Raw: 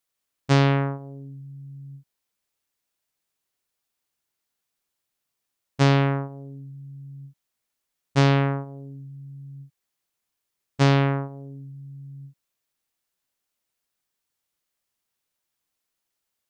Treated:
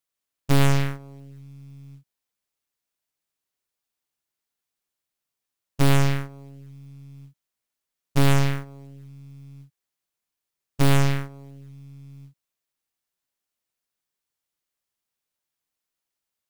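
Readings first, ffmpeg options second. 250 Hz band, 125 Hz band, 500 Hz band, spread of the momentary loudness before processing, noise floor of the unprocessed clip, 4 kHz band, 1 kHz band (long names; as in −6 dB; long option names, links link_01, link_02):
−1.5 dB, −0.5 dB, −3.5 dB, 21 LU, −82 dBFS, 0.0 dB, −3.0 dB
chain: -af "acrusher=bits=6:mode=log:mix=0:aa=0.000001,aeval=exprs='0.376*(cos(1*acos(clip(val(0)/0.376,-1,1)))-cos(1*PI/2))+0.188*(cos(6*acos(clip(val(0)/0.376,-1,1)))-cos(6*PI/2))':channel_layout=same,volume=-4dB"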